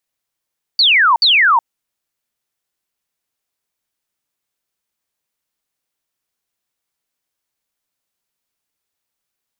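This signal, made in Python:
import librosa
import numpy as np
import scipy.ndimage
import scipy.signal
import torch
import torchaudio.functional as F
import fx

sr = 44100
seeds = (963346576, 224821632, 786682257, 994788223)

y = fx.laser_zaps(sr, level_db=-8.0, start_hz=4700.0, end_hz=880.0, length_s=0.37, wave='sine', shots=2, gap_s=0.06)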